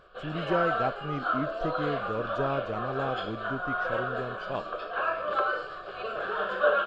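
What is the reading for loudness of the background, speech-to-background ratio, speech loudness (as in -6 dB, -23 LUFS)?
-31.5 LUFS, -3.0 dB, -34.5 LUFS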